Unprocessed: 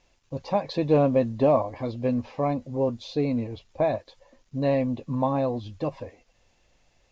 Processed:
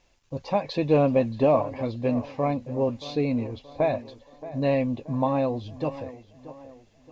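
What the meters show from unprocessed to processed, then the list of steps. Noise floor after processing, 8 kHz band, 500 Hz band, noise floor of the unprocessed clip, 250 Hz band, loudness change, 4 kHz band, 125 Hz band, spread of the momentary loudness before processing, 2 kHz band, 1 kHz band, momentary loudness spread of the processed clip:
-60 dBFS, no reading, 0.0 dB, -66 dBFS, 0.0 dB, 0.0 dB, +1.0 dB, 0.0 dB, 13 LU, +3.0 dB, +0.5 dB, 17 LU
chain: on a send: tape echo 627 ms, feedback 46%, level -14.5 dB, low-pass 3.2 kHz; on the sum: dynamic bell 2.6 kHz, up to +5 dB, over -51 dBFS, Q 2.5

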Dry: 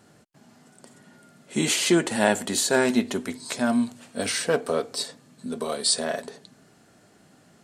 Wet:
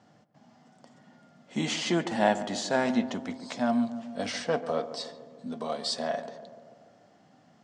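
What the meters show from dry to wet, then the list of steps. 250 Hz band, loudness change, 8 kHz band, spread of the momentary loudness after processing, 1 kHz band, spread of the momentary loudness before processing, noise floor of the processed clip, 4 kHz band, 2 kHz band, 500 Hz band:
-4.0 dB, -5.5 dB, -13.5 dB, 14 LU, -0.5 dB, 12 LU, -61 dBFS, -7.0 dB, -6.5 dB, -4.5 dB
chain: cabinet simulation 110–5600 Hz, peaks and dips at 390 Hz -10 dB, 750 Hz +5 dB, 1.5 kHz -5 dB, 2.5 kHz -5 dB, 4.1 kHz -6 dB; tape echo 143 ms, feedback 74%, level -11 dB, low-pass 1.1 kHz; trim -3 dB

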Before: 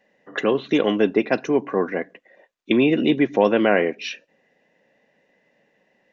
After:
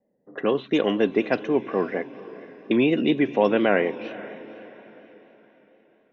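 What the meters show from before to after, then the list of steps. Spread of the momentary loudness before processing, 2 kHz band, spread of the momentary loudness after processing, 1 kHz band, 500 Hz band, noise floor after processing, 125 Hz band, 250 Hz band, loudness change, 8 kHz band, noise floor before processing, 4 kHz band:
14 LU, -3.0 dB, 20 LU, -2.5 dB, -2.5 dB, -64 dBFS, -2.5 dB, -2.5 dB, -2.5 dB, no reading, -66 dBFS, -3.5 dB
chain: level-controlled noise filter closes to 450 Hz, open at -14 dBFS; echo that smears into a reverb 493 ms, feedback 42%, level -16 dB; vibrato 4.2 Hz 48 cents; trim -2.5 dB

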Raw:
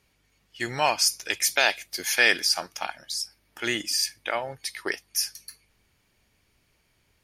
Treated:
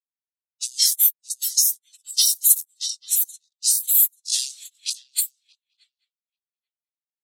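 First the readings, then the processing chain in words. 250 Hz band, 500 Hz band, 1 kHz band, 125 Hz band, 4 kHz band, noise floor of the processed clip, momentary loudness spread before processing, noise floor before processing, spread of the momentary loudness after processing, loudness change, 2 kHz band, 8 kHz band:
under -40 dB, under -40 dB, under -35 dB, under -40 dB, +2.0 dB, under -85 dBFS, 14 LU, -69 dBFS, 14 LU, +6.0 dB, -24.5 dB, +9.5 dB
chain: in parallel at -2 dB: gain riding within 3 dB 0.5 s; on the sum: small samples zeroed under -25.5 dBFS; spectral gate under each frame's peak -25 dB weak; pre-emphasis filter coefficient 0.9; on a send: shuffle delay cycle 837 ms, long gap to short 3:1, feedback 33%, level -10 dB; on the sum: level-controlled noise filter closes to 2.5 kHz, open at -30.5 dBFS; tilt shelf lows -6 dB; saturation -16 dBFS, distortion -25 dB; loudness maximiser +26 dB; spectral contrast expander 2.5:1; trim -1 dB

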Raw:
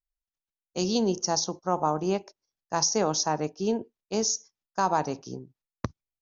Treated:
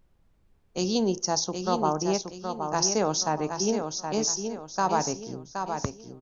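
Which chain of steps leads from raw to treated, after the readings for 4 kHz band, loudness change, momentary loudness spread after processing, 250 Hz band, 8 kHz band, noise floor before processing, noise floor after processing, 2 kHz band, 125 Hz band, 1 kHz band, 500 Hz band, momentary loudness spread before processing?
+1.0 dB, 0.0 dB, 9 LU, +1.0 dB, no reading, under -85 dBFS, -64 dBFS, +1.0 dB, +1.0 dB, +1.0 dB, +1.0 dB, 13 LU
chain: added noise brown -63 dBFS; on a send: feedback delay 771 ms, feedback 37%, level -6.5 dB

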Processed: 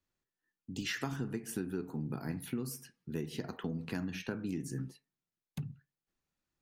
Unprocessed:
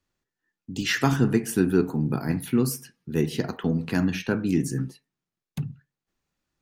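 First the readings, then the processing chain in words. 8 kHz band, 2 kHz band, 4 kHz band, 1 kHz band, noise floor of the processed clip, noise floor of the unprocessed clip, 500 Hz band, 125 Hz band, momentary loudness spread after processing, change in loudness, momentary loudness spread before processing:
-11.5 dB, -12.5 dB, -11.0 dB, -14.5 dB, under -85 dBFS, under -85 dBFS, -15.0 dB, -13.5 dB, 9 LU, -14.0 dB, 13 LU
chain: compression 6:1, threshold -26 dBFS, peak gain reduction 11 dB; trim -7.5 dB

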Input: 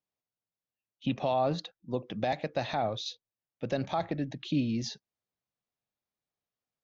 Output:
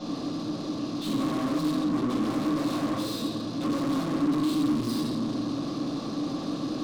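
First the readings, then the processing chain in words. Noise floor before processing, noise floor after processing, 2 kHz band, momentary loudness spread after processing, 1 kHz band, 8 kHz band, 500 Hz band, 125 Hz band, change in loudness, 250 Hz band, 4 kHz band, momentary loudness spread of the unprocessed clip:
under -85 dBFS, -34 dBFS, +1.5 dB, 6 LU, 0.0 dB, no reading, -0.5 dB, +2.5 dB, +4.5 dB, +11.0 dB, +4.5 dB, 10 LU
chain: spectral levelling over time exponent 0.4; graphic EQ 1/2/4 kHz -3/-9/+7 dB; compression 6:1, threshold -32 dBFS, peak gain reduction 11 dB; simulated room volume 560 m³, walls mixed, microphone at 7 m; saturation -34.5 dBFS, distortion -2 dB; small resonant body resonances 280/1100 Hz, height 16 dB, ringing for 30 ms; trim -1 dB

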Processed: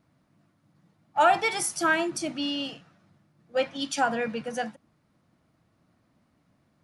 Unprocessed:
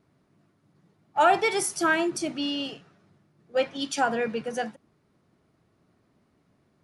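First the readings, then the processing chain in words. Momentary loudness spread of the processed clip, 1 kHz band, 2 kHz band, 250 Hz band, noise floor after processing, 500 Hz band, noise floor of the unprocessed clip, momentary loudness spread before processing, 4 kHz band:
11 LU, 0.0 dB, 0.0 dB, -1.5 dB, -69 dBFS, -2.0 dB, -68 dBFS, 11 LU, 0.0 dB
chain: peaking EQ 400 Hz -14.5 dB 0.21 oct

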